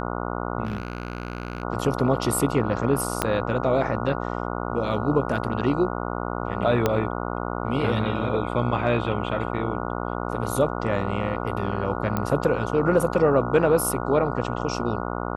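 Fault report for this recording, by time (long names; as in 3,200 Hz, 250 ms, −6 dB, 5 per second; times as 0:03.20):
mains buzz 60 Hz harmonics 24 −29 dBFS
0:00.64–0:01.63: clipping −24 dBFS
0:03.22: click −7 dBFS
0:06.86: click −7 dBFS
0:12.17: click −12 dBFS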